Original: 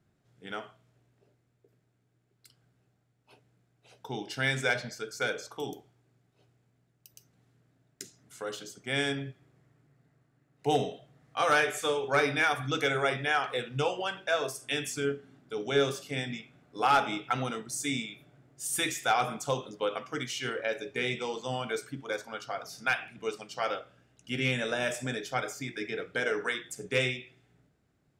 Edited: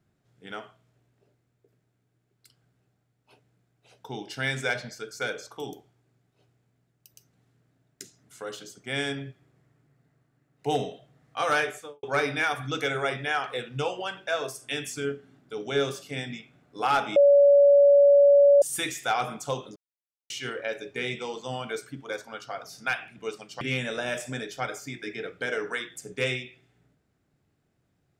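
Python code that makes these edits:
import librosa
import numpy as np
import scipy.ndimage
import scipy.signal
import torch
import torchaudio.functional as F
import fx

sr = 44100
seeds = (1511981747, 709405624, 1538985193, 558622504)

y = fx.studio_fade_out(x, sr, start_s=11.6, length_s=0.43)
y = fx.edit(y, sr, fx.bleep(start_s=17.16, length_s=1.46, hz=568.0, db=-13.0),
    fx.silence(start_s=19.76, length_s=0.54),
    fx.cut(start_s=23.61, length_s=0.74), tone=tone)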